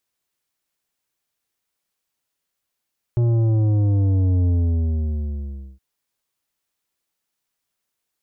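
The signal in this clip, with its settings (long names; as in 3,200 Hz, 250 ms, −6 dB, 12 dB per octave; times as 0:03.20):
bass drop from 120 Hz, over 2.62 s, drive 9.5 dB, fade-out 1.32 s, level −16 dB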